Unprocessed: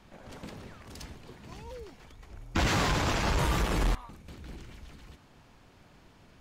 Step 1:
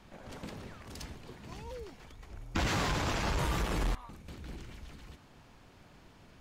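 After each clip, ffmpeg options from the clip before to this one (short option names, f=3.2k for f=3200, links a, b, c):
-af "acompressor=threshold=-36dB:ratio=1.5"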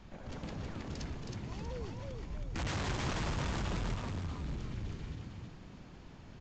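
-filter_complex "[0:a]lowshelf=f=220:g=8,aresample=16000,asoftclip=type=hard:threshold=-34dB,aresample=44100,asplit=6[a][b][c][d][e][f];[b]adelay=319,afreqshift=49,volume=-3.5dB[g];[c]adelay=638,afreqshift=98,volume=-11.7dB[h];[d]adelay=957,afreqshift=147,volume=-19.9dB[i];[e]adelay=1276,afreqshift=196,volume=-28dB[j];[f]adelay=1595,afreqshift=245,volume=-36.2dB[k];[a][g][h][i][j][k]amix=inputs=6:normalize=0,volume=-1.5dB"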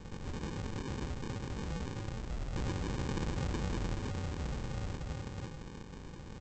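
-af "equalizer=f=1.9k:t=o:w=0.41:g=12,acompressor=threshold=-42dB:ratio=2,aresample=16000,acrusher=samples=24:mix=1:aa=0.000001,aresample=44100,volume=5dB"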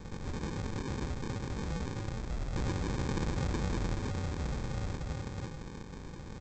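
-af "bandreject=f=2.9k:w=9,volume=2.5dB"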